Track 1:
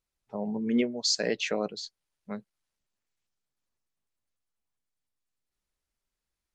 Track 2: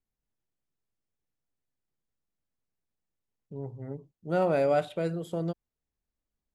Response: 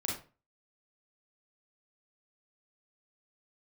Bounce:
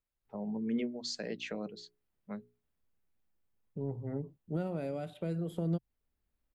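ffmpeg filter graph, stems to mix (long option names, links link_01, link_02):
-filter_complex "[0:a]bandreject=frequency=60:width_type=h:width=6,bandreject=frequency=120:width_type=h:width=6,bandreject=frequency=180:width_type=h:width=6,bandreject=frequency=240:width_type=h:width=6,bandreject=frequency=300:width_type=h:width=6,bandreject=frequency=360:width_type=h:width=6,bandreject=frequency=420:width_type=h:width=6,volume=-5.5dB[link_01];[1:a]equalizer=frequency=130:width_type=o:width=0.21:gain=-7,alimiter=level_in=1dB:limit=-24dB:level=0:latency=1:release=479,volume=-1dB,adelay=250,volume=2.5dB[link_02];[link_01][link_02]amix=inputs=2:normalize=0,equalizer=frequency=6200:width_type=o:width=1.4:gain=-9.5,acrossover=split=320|3000[link_03][link_04][link_05];[link_04]acompressor=threshold=-41dB:ratio=6[link_06];[link_03][link_06][link_05]amix=inputs=3:normalize=0,lowshelf=frequency=170:gain=4.5"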